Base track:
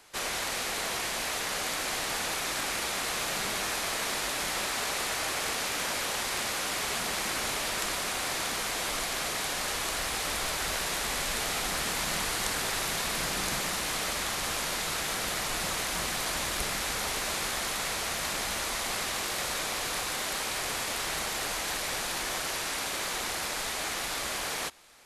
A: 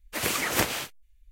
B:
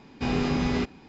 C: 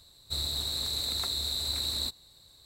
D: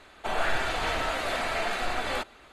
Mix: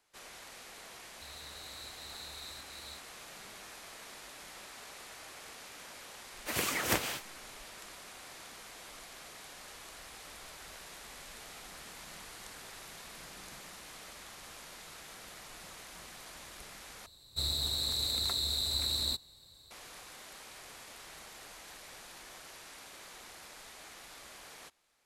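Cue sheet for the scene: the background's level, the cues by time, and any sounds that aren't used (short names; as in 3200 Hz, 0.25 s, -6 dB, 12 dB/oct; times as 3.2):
base track -18 dB
0.9 add C -15 dB + noise-modulated level
6.33 add A -5.5 dB
17.06 replace with C -1 dB
not used: B, D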